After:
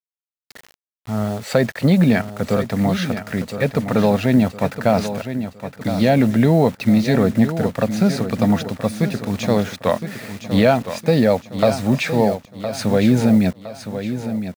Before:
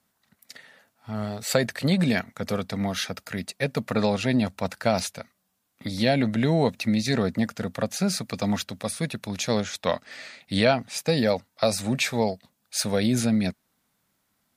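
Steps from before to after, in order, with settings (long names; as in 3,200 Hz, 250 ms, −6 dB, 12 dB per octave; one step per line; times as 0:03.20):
low-pass filter 1,400 Hz 6 dB per octave
noise gate with hold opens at −49 dBFS
in parallel at +0.5 dB: brickwall limiter −15 dBFS, peak gain reduction 8 dB
on the sum: bit reduction 7 bits
repeating echo 1,013 ms, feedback 40%, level −10 dB
level +2.5 dB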